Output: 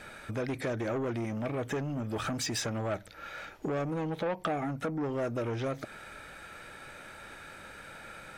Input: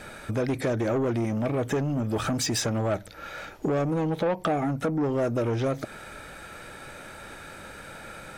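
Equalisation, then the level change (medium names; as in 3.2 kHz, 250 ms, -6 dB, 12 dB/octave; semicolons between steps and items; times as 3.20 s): peaking EQ 2.1 kHz +4.5 dB 2.2 oct; -7.5 dB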